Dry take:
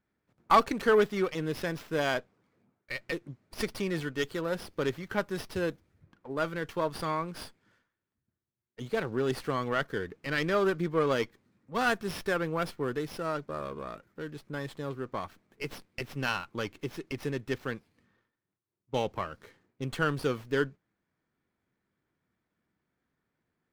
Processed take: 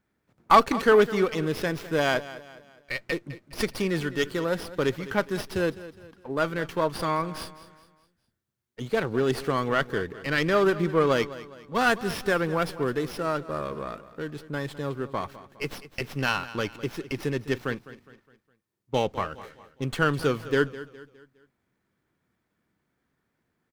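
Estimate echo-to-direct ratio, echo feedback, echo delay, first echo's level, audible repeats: −15.0 dB, 42%, 206 ms, −16.0 dB, 3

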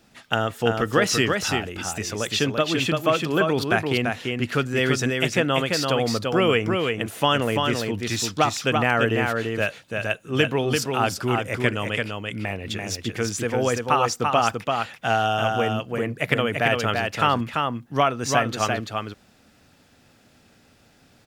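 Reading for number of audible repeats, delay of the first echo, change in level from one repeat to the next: 1, 339 ms, repeats not evenly spaced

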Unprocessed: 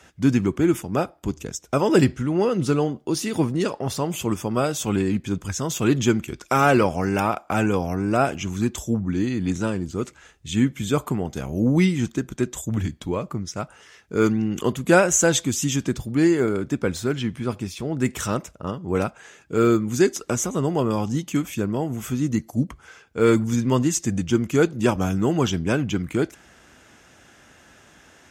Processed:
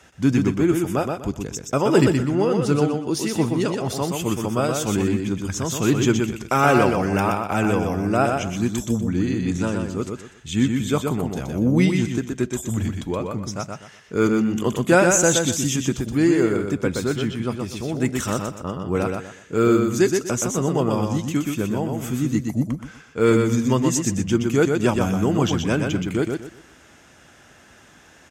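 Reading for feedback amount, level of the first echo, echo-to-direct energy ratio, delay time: 27%, −4.5 dB, −4.0 dB, 123 ms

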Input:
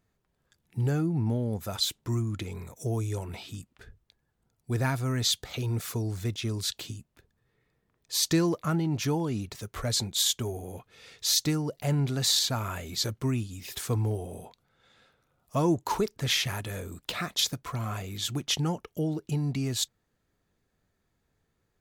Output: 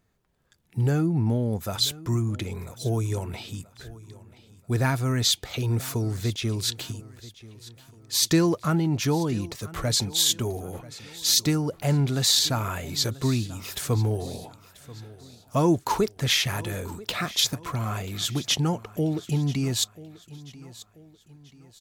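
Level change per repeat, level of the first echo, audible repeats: −7.5 dB, −19.0 dB, 3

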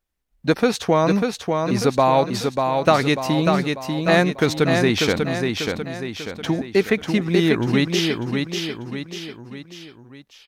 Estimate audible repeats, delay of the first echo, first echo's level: 4, 593 ms, −4.5 dB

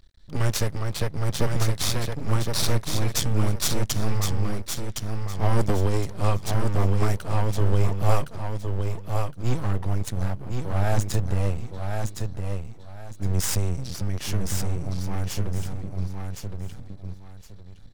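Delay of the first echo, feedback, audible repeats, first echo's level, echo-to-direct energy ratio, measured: 1,064 ms, 25%, 3, −5.0 dB, −4.5 dB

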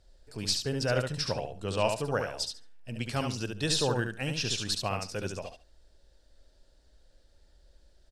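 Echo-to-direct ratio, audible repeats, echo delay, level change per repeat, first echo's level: −5.0 dB, 2, 71 ms, −15.5 dB, −5.0 dB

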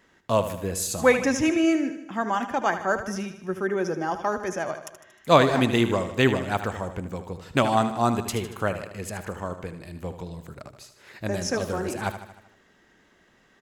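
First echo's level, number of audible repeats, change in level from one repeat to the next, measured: −11.0 dB, 5, −5.0 dB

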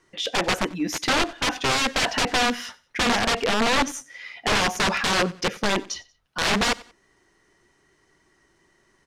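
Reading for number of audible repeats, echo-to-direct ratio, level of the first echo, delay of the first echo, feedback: 2, −21.0 dB, −21.5 dB, 92 ms, 32%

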